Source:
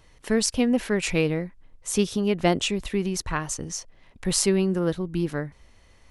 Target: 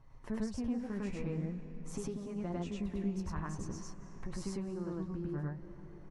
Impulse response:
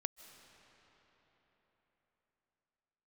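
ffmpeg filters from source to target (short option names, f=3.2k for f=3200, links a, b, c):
-filter_complex "[0:a]firequalizer=gain_entry='entry(120,0);entry(460,-9);entry(1000,-3);entry(1500,-10);entry(3100,-21);entry(5600,-18);entry(11000,-25)':delay=0.05:min_phase=1,acompressor=threshold=-36dB:ratio=6,flanger=delay=7.2:depth=8.1:regen=28:speed=0.5:shape=sinusoidal,asplit=2[a][b];[1:a]atrim=start_sample=2205,asetrate=37485,aresample=44100,adelay=101[c];[b][c]afir=irnorm=-1:irlink=0,volume=2.5dB[d];[a][d]amix=inputs=2:normalize=0,volume=1.5dB"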